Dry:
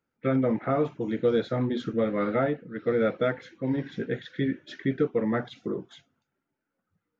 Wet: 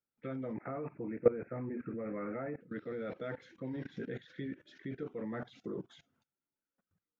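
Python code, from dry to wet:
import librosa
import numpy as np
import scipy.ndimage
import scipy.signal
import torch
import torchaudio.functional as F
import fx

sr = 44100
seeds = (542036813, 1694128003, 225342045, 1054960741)

y = fx.cheby1_lowpass(x, sr, hz=2600.0, order=10, at=(0.53, 2.61))
y = fx.level_steps(y, sr, step_db=20)
y = y * 10.0 ** (1.0 / 20.0)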